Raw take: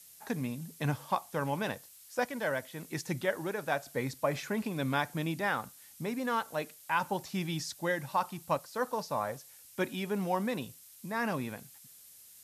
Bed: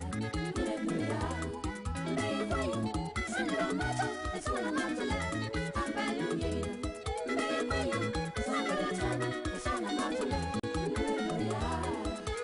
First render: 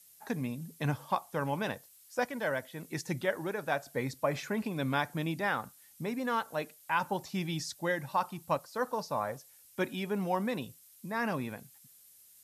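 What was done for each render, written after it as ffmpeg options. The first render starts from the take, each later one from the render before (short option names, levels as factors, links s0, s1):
-af "afftdn=nr=6:nf=-55"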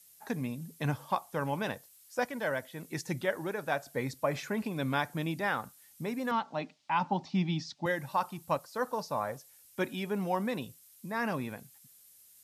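-filter_complex "[0:a]asettb=1/sr,asplit=3[s0][s1][s2];[s0]atrim=end=6.314[s3];[s1]atrim=start=6.31:end=7.86,asetpts=PTS-STARTPTS,afade=t=in:d=0.004:c=qsin,afade=t=out:st=1.546:d=0.004:c=qsin,highpass=120,equalizer=f=180:t=q:w=4:g=7,equalizer=f=260:t=q:w=4:g=7,equalizer=f=470:t=q:w=4:g=-9,equalizer=f=820:t=q:w=4:g=5,equalizer=f=1600:t=q:w=4:g=-7,lowpass=f=5100:w=0.5412,lowpass=f=5100:w=1.3066[s4];[s2]atrim=start=7.856[s5];[s3][s4]acrossfade=d=0.004:c1=hsin:c2=qsin[s6];[s6][s5]acrossfade=d=0.004:c1=qsin:c2=hsin"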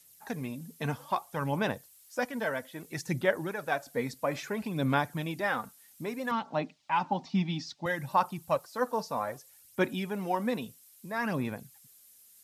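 -af "aphaser=in_gain=1:out_gain=1:delay=4.5:decay=0.42:speed=0.61:type=sinusoidal"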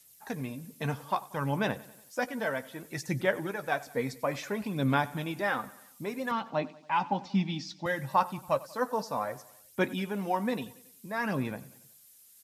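-filter_complex "[0:a]asplit=2[s0][s1];[s1]adelay=15,volume=0.224[s2];[s0][s2]amix=inputs=2:normalize=0,aecho=1:1:93|186|279|372:0.1|0.056|0.0314|0.0176"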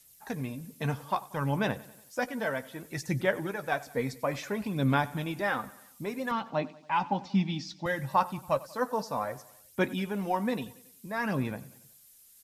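-af "lowshelf=f=64:g=12"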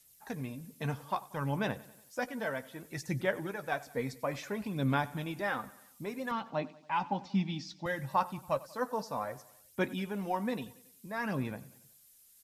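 -af "volume=0.631"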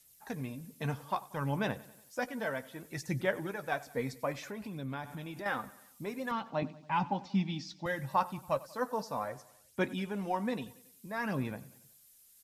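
-filter_complex "[0:a]asettb=1/sr,asplit=3[s0][s1][s2];[s0]atrim=end=4.324[s3];[s1]atrim=start=4.32:end=5.46,asetpts=PTS-STARTPTS,afade=t=in:d=0.004:c=qsin,afade=t=out:st=1.136:d=0.004:c=qsin,acompressor=threshold=0.01:ratio=2.5:attack=3.2:release=140:knee=1:detection=peak[s4];[s2]atrim=start=5.456[s5];[s3][s4]acrossfade=d=0.004:c1=hsin:c2=qsin[s6];[s6][s5]acrossfade=d=0.004:c1=qsin:c2=hsin,asettb=1/sr,asplit=3[s7][s8][s9];[s7]atrim=end=6.624[s10];[s8]atrim=start=6.62:end=7.11,asetpts=PTS-STARTPTS,afade=t=in:d=0.004:c=qsin,afade=t=out:st=0.486:d=0.004:c=qsin,equalizer=f=110:w=0.73:g=13.5[s11];[s9]atrim=start=7.106[s12];[s10][s11]acrossfade=d=0.004:c1=hsin:c2=qsin[s13];[s13][s12]acrossfade=d=0.004:c1=qsin:c2=hsin,asettb=1/sr,asplit=3[s14][s15][s16];[s14]atrim=end=9.284[s17];[s15]atrim=start=9.28:end=10.67,asetpts=PTS-STARTPTS,afade=t=in:d=0.004:c=qsin,afade=t=out:st=1.386:d=0.004:c=qsin,lowpass=11000[s18];[s16]atrim=start=10.666[s19];[s17][s18]acrossfade=d=0.004:c1=hsin:c2=qsin[s20];[s20][s19]acrossfade=d=0.004:c1=qsin:c2=hsin"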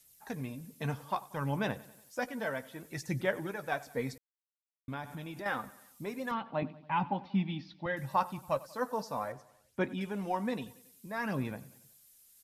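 -filter_complex "[0:a]asettb=1/sr,asplit=3[s0][s1][s2];[s0]atrim=end=6.344[s3];[s1]atrim=start=6.34:end=7.97,asetpts=PTS-STARTPTS,afade=t=in:d=0.004:c=qsin,afade=t=out:st=1.626:d=0.004:c=qsin,lowpass=f=3600:w=0.5412,lowpass=f=3600:w=1.3066[s4];[s2]atrim=start=7.966[s5];[s3][s4]acrossfade=d=0.004:c1=hsin:c2=qsin[s6];[s6][s5]acrossfade=d=0.004:c1=qsin:c2=hsin,asettb=1/sr,asplit=3[s7][s8][s9];[s7]atrim=end=9.324[s10];[s8]atrim=start=9.32:end=10.01,asetpts=PTS-STARTPTS,afade=t=in:d=0.004:c=qsin,afade=t=out:st=0.686:d=0.004:c=qsin,highshelf=f=4100:g=-11[s11];[s9]atrim=start=10.006[s12];[s10][s11]acrossfade=d=0.004:c1=hsin:c2=qsin[s13];[s13][s12]acrossfade=d=0.004:c1=qsin:c2=hsin,asplit=3[s14][s15][s16];[s14]atrim=end=4.18,asetpts=PTS-STARTPTS,afade=t=out:st=4.176:d=0.004:c=hsin[s17];[s15]atrim=start=4.18:end=4.88,asetpts=PTS-STARTPTS,volume=0[s18];[s16]atrim=start=4.88,asetpts=PTS-STARTPTS,afade=t=in:d=0.004:c=hsin[s19];[s17][s18][s19]concat=n=3:v=0:a=1"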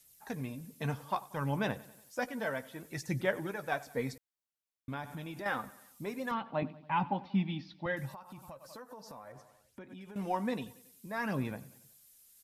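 -filter_complex "[0:a]asettb=1/sr,asplit=3[s0][s1][s2];[s0]atrim=end=8.094[s3];[s1]atrim=start=8.09:end=10.16,asetpts=PTS-STARTPTS,afade=t=in:d=0.004:c=qsin,afade=t=out:st=2.066:d=0.004:c=qsin,acompressor=threshold=0.00631:ratio=20:attack=3.2:release=140:knee=1:detection=peak[s4];[s2]atrim=start=10.156[s5];[s3][s4]acrossfade=d=0.004:c1=hsin:c2=qsin[s6];[s6][s5]acrossfade=d=0.004:c1=qsin:c2=hsin"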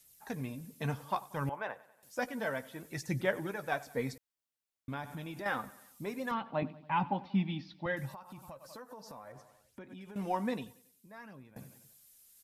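-filter_complex "[0:a]asettb=1/sr,asplit=3[s0][s1][s2];[s0]atrim=end=1.494[s3];[s1]atrim=start=1.49:end=2.03,asetpts=PTS-STARTPTS,afade=t=in:d=0.004:c=qsin,afade=t=out:st=0.536:d=0.004:c=qsin,acrossover=split=530 2100:gain=0.0708 1 0.141[s4][s5][s6];[s4][s5][s6]amix=inputs=3:normalize=0[s7];[s2]atrim=start=2.026[s8];[s3][s7]acrossfade=d=0.004:c1=hsin:c2=qsin[s9];[s9][s8]acrossfade=d=0.004:c1=qsin:c2=hsin,asplit=2[s10][s11];[s10]atrim=end=11.56,asetpts=PTS-STARTPTS,afade=t=out:st=10.49:d=1.07:c=qua:silence=0.0891251[s12];[s11]atrim=start=11.56,asetpts=PTS-STARTPTS,afade=t=in:d=0.004:c=hsin:silence=0.0891251[s13];[s12][s13]concat=n=2:v=0:a=1"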